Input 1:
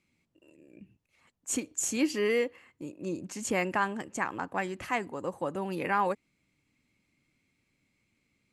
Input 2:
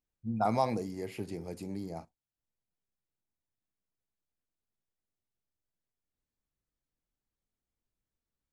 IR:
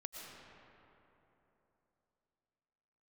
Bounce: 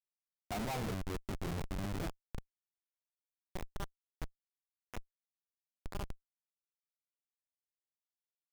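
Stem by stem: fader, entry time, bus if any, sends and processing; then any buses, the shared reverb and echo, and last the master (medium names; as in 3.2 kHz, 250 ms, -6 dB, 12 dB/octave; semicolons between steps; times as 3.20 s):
-7.0 dB, 0.00 s, no send, none
-3.5 dB, 0.10 s, no send, hum notches 60/120/180/240/300/360/420/480 Hz; level rider gain up to 15 dB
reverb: none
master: flange 0.27 Hz, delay 2 ms, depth 7.7 ms, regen +80%; Schmitt trigger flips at -31 dBFS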